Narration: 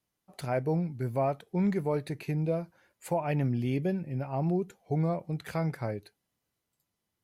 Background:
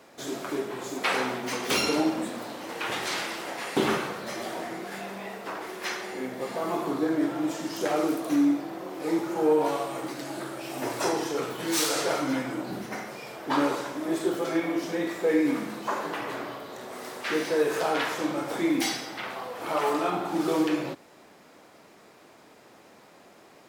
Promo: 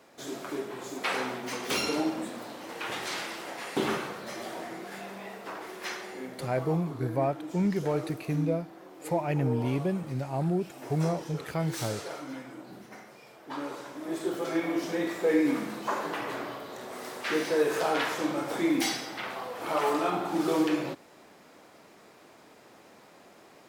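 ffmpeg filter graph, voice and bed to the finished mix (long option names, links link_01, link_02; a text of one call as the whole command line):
ffmpeg -i stem1.wav -i stem2.wav -filter_complex "[0:a]adelay=6000,volume=0.5dB[link_01];[1:a]volume=7dB,afade=type=out:start_time=5.94:duration=0.88:silence=0.398107,afade=type=in:start_time=13.63:duration=1.17:silence=0.281838[link_02];[link_01][link_02]amix=inputs=2:normalize=0" out.wav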